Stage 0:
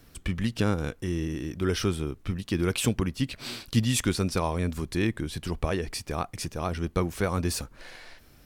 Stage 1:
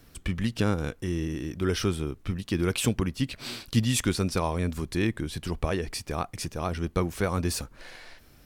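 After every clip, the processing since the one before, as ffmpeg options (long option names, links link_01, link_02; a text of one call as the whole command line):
ffmpeg -i in.wav -af anull out.wav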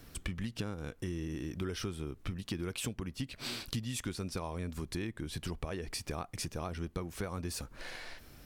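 ffmpeg -i in.wav -af "acompressor=threshold=-36dB:ratio=6,volume=1dB" out.wav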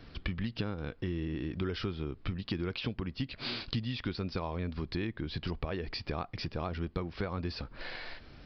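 ffmpeg -i in.wav -af "aresample=11025,aresample=44100,volume=3dB" out.wav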